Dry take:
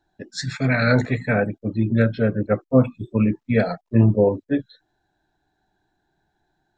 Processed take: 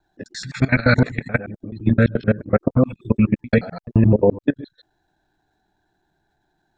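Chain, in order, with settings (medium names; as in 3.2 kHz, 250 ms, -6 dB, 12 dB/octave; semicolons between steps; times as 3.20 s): time reversed locally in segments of 86 ms; dynamic bell 610 Hz, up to -3 dB, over -32 dBFS, Q 1.3; level held to a coarse grid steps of 19 dB; trim +6.5 dB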